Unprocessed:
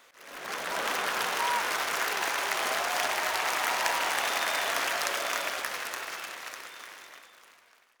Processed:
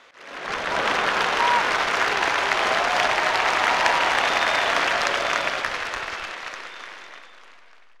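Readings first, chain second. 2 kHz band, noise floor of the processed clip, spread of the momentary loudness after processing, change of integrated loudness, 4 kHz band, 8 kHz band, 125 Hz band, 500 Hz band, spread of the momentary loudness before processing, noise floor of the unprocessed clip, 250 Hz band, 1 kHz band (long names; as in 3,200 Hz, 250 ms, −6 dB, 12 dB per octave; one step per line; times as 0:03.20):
+8.5 dB, −48 dBFS, 15 LU, +7.5 dB, +6.5 dB, −1.0 dB, can't be measured, +9.0 dB, 14 LU, −60 dBFS, +10.0 dB, +8.5 dB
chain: low-pass filter 4,400 Hz 12 dB per octave
in parallel at −10 dB: slack as between gear wheels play −23.5 dBFS
on the sum: level +7.5 dB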